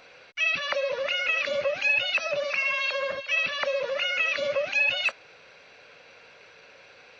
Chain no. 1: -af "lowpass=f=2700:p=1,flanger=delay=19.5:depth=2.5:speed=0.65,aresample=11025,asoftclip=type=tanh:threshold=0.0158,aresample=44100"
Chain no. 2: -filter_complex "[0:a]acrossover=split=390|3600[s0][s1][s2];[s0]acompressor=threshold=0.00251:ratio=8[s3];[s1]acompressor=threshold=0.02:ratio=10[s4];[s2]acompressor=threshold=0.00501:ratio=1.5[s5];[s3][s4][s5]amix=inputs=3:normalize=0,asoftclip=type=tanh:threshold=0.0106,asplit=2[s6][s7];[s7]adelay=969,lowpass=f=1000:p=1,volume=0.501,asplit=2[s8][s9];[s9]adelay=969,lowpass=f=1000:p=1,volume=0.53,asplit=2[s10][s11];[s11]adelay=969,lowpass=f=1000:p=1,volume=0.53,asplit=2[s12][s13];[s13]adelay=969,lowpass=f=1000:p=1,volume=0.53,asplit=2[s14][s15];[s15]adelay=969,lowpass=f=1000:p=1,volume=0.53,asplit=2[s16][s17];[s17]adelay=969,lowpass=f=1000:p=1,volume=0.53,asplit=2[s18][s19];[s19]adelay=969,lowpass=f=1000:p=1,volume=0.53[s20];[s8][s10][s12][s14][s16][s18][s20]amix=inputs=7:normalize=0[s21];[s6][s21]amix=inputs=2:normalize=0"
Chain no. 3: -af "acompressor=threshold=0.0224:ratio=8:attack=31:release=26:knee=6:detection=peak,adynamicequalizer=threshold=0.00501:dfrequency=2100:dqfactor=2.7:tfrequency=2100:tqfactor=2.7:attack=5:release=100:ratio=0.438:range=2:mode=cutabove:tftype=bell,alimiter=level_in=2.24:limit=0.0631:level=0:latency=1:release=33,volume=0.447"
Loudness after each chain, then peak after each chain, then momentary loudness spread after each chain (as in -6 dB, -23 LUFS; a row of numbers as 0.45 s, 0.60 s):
-37.0 LUFS, -41.0 LUFS, -36.5 LUFS; -32.0 dBFS, -35.0 dBFS, -31.0 dBFS; 19 LU, 11 LU, 15 LU